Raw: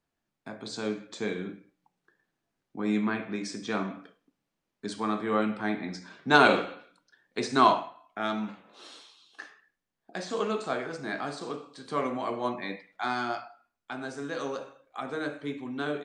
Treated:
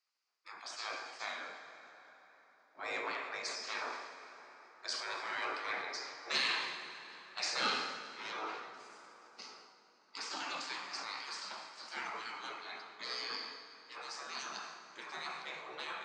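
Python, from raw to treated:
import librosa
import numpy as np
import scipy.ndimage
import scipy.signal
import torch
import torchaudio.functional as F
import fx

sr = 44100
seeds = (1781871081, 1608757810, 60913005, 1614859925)

y = fx.octave_divider(x, sr, octaves=2, level_db=3.0)
y = fx.spec_gate(y, sr, threshold_db=-20, keep='weak')
y = 10.0 ** (-28.5 / 20.0) * np.tanh(y / 10.0 ** (-28.5 / 20.0))
y = fx.cabinet(y, sr, low_hz=210.0, low_slope=24, high_hz=6700.0, hz=(530.0, 1200.0, 3400.0, 4800.0), db=(-5, 4, -7, 9))
y = fx.rev_plate(y, sr, seeds[0], rt60_s=4.3, hf_ratio=0.6, predelay_ms=0, drr_db=5.5)
y = fx.sustainer(y, sr, db_per_s=45.0)
y = y * 10.0 ** (2.5 / 20.0)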